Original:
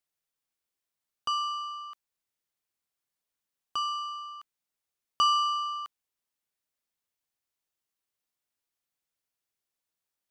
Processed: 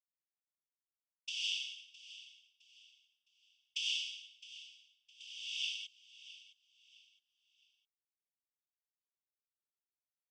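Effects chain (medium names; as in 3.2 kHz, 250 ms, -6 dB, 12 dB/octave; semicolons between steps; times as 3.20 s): expander -32 dBFS; peaking EQ 4.5 kHz -5 dB 2.4 oct; compressor with a negative ratio -33 dBFS, ratio -0.5; noise-vocoded speech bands 16; brick-wall FIR high-pass 2.2 kHz; feedback delay 662 ms, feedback 33%, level -16 dB; trim +6 dB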